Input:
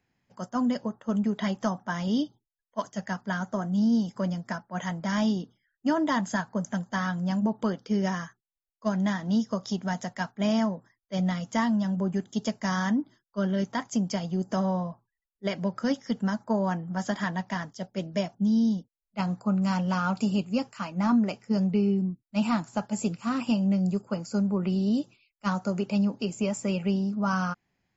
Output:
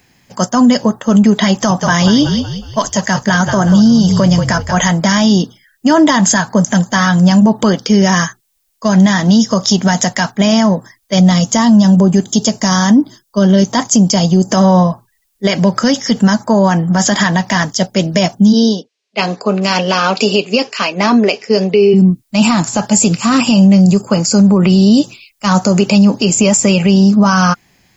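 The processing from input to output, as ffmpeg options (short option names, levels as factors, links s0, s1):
-filter_complex "[0:a]asettb=1/sr,asplit=3[s0][s1][s2];[s0]atrim=end=1.514[s3];[s1]atrim=start=1.51:end=4.91,asetpts=PTS-STARTPTS,afade=t=in:d=0.004:c=qsin,afade=t=out:st=3.396:d=0.004:c=qsin,asplit=5[s4][s5][s6][s7][s8];[s5]adelay=184,afreqshift=-47,volume=0.282[s9];[s6]adelay=368,afreqshift=-94,volume=0.112[s10];[s7]adelay=552,afreqshift=-141,volume=0.0452[s11];[s8]adelay=736,afreqshift=-188,volume=0.018[s12];[s4][s9][s10][s11][s12]amix=inputs=5:normalize=0,atrim=end_sample=149940[s13];[s2]atrim=start=4.906[s14];[s3][s13]acrossfade=d=0.004:c1=hsin:c2=qsin[s15];[s15][s14]acrossfade=d=0.004:c1=qsin:c2=hsin,asettb=1/sr,asplit=3[s16][s17][s18];[s16]atrim=end=11.194[s19];[s17]atrim=start=11.19:end=14.51,asetpts=PTS-STARTPTS,afade=t=in:d=0.004:c=qsin,afade=t=out:st=3.316:d=0.004:c=qsin,equalizer=f=2000:t=o:w=1.4:g=-6.5[s20];[s18]atrim=start=14.506[s21];[s19][s20]acrossfade=d=0.004:c1=hsin:c2=qsin[s22];[s22][s21]acrossfade=d=0.004:c1=qsin:c2=hsin,asplit=3[s23][s24][s25];[s23]afade=t=out:st=18.52:d=0.02[s26];[s24]highpass=390,equalizer=f=420:t=q:w=4:g=10,equalizer=f=870:t=q:w=4:g=-6,equalizer=f=1300:t=q:w=4:g=-5,equalizer=f=2600:t=q:w=4:g=4,lowpass=f=5500:w=0.5412,lowpass=f=5500:w=1.3066,afade=t=in:st=18.52:d=0.02,afade=t=out:st=21.93:d=0.02[s27];[s25]afade=t=in:st=21.93:d=0.02[s28];[s26][s27][s28]amix=inputs=3:normalize=0,highshelf=f=3600:g=11.5,bandreject=f=1400:w=18,alimiter=level_in=13.3:limit=0.891:release=50:level=0:latency=1,volume=0.891"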